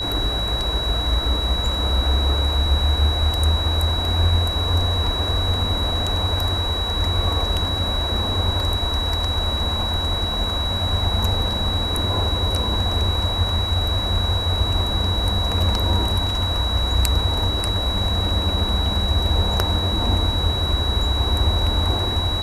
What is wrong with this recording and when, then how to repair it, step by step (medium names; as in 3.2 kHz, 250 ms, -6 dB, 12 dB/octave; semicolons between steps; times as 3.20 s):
whine 3.9 kHz -24 dBFS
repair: band-stop 3.9 kHz, Q 30